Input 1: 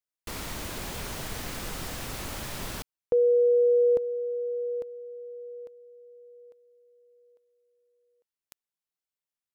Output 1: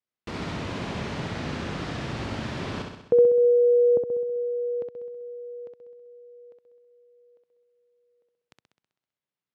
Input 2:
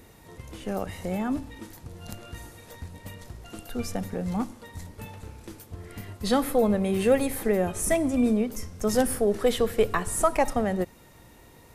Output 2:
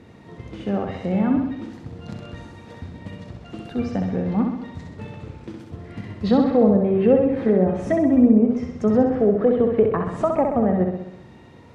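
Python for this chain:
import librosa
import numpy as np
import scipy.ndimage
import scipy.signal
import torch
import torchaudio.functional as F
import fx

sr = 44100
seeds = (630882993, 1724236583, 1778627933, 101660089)

y = scipy.signal.sosfilt(scipy.signal.butter(2, 3800.0, 'lowpass', fs=sr, output='sos'), x)
y = fx.env_lowpass_down(y, sr, base_hz=900.0, full_db=-19.5)
y = scipy.signal.sosfilt(scipy.signal.butter(2, 140.0, 'highpass', fs=sr, output='sos'), y)
y = fx.low_shelf(y, sr, hz=260.0, db=12.0)
y = fx.room_flutter(y, sr, wall_m=11.1, rt60_s=0.84)
y = F.gain(torch.from_numpy(y), 1.5).numpy()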